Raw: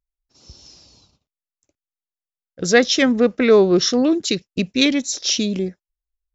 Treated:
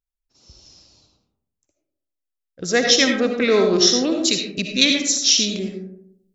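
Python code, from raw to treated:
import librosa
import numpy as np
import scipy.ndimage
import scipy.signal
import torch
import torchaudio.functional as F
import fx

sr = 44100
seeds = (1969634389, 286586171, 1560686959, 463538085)

y = fx.high_shelf(x, sr, hz=2100.0, db=fx.steps((0.0, 2.0), (2.87, 11.5)))
y = fx.rev_freeverb(y, sr, rt60_s=0.77, hf_ratio=0.35, predelay_ms=35, drr_db=3.0)
y = F.gain(torch.from_numpy(y), -5.5).numpy()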